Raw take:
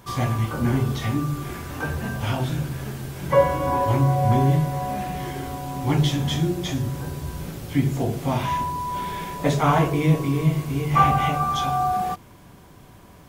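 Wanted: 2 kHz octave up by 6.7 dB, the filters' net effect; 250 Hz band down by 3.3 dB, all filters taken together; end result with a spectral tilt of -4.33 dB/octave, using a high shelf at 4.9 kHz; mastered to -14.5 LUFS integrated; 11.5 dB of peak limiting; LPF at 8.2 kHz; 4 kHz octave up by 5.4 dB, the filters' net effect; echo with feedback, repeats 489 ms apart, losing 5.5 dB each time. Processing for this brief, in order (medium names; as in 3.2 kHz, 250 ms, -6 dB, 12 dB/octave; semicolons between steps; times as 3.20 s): low-pass 8.2 kHz; peaking EQ 250 Hz -5.5 dB; peaking EQ 2 kHz +8 dB; peaking EQ 4 kHz +6 dB; treble shelf 4.9 kHz -5 dB; peak limiter -14.5 dBFS; feedback delay 489 ms, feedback 53%, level -5.5 dB; trim +9.5 dB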